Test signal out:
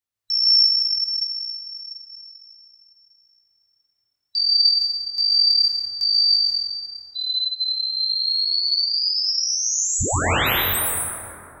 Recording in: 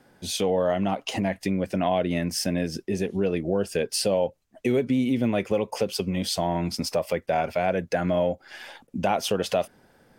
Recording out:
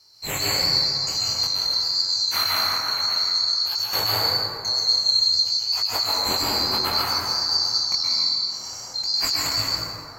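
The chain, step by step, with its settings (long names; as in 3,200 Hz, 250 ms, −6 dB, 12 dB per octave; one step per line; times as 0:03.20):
neighbouring bands swapped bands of 4,000 Hz
parametric band 93 Hz +13 dB 0.9 octaves
brickwall limiter −20 dBFS
chorus effect 0.53 Hz, delay 18.5 ms, depth 6.9 ms
dense smooth reverb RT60 2.9 s, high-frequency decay 0.35×, pre-delay 110 ms, DRR −5.5 dB
level +6 dB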